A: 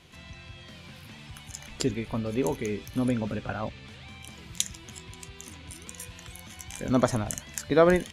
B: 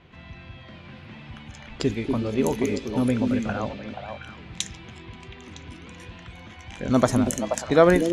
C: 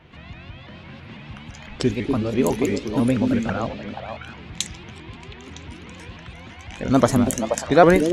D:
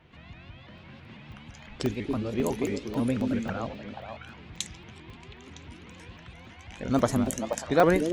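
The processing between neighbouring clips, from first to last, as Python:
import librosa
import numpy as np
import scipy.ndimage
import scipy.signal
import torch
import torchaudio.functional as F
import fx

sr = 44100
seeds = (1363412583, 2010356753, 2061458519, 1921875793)

y1 = fx.echo_stepped(x, sr, ms=240, hz=280.0, octaves=1.4, feedback_pct=70, wet_db=-1.0)
y1 = fx.env_lowpass(y1, sr, base_hz=2100.0, full_db=-22.5)
y1 = y1 * 10.0 ** (3.5 / 20.0)
y2 = fx.vibrato_shape(y1, sr, shape='saw_up', rate_hz=6.0, depth_cents=160.0)
y2 = y2 * 10.0 ** (3.0 / 20.0)
y3 = fx.buffer_crackle(y2, sr, first_s=0.78, period_s=0.27, block=64, kind='zero')
y3 = y3 * 10.0 ** (-7.5 / 20.0)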